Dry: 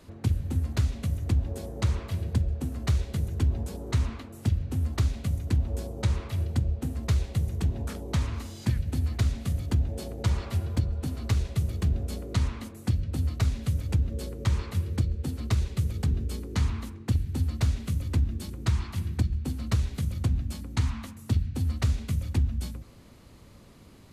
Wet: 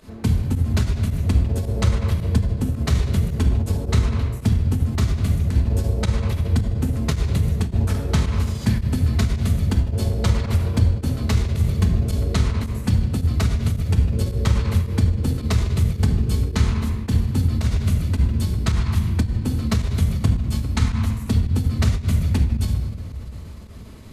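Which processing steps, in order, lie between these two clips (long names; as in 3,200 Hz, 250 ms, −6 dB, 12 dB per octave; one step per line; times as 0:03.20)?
rectangular room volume 1,900 cubic metres, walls mixed, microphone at 1.5 metres
fake sidechain pumping 109 BPM, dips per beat 1, −12 dB, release 71 ms
every ending faded ahead of time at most 140 dB per second
level +7 dB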